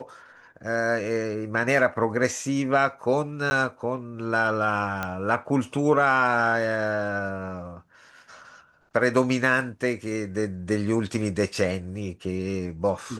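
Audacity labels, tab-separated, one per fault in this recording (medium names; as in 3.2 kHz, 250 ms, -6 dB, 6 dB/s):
3.500000	3.510000	dropout 10 ms
5.030000	5.030000	pop -14 dBFS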